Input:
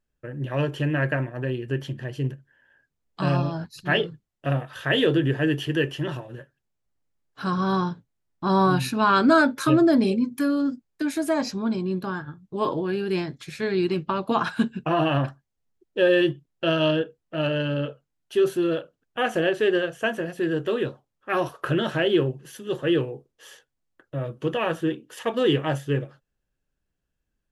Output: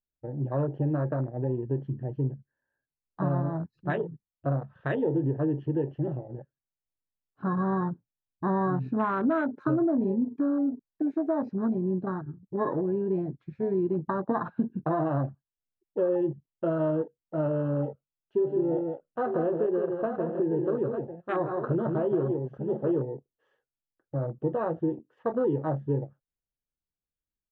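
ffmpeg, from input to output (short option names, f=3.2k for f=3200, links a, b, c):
-filter_complex "[0:a]asplit=3[a][b][c];[a]afade=t=out:st=18.45:d=0.02[d];[b]aecho=1:1:164|898:0.473|0.266,afade=t=in:st=18.45:d=0.02,afade=t=out:st=23.01:d=0.02[e];[c]afade=t=in:st=23.01:d=0.02[f];[d][e][f]amix=inputs=3:normalize=0,acompressor=threshold=-23dB:ratio=4,lowpass=1.2k,afwtdn=0.02"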